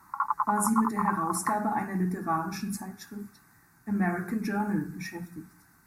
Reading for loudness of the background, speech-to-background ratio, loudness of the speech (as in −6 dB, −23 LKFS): −31.0 LKFS, 0.5 dB, −30.5 LKFS